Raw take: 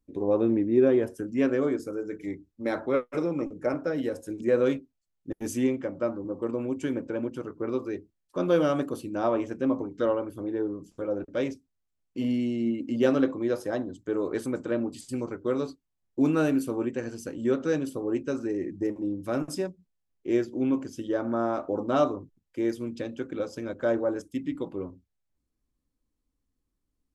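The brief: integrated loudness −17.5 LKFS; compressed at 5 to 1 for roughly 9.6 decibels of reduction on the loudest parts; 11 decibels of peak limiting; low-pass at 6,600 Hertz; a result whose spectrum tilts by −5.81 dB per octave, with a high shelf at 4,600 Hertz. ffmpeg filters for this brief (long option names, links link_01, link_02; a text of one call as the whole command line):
ffmpeg -i in.wav -af "lowpass=6600,highshelf=frequency=4600:gain=-8.5,acompressor=threshold=-28dB:ratio=5,volume=21dB,alimiter=limit=-8dB:level=0:latency=1" out.wav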